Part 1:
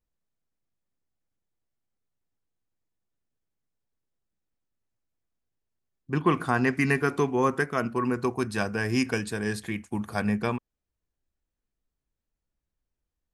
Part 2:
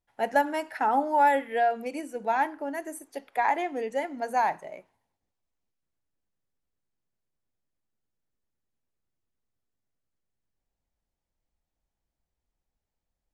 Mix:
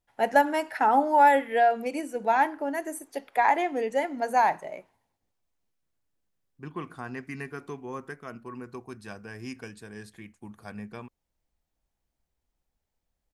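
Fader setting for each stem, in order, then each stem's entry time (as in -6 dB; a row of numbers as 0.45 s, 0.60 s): -13.5 dB, +3.0 dB; 0.50 s, 0.00 s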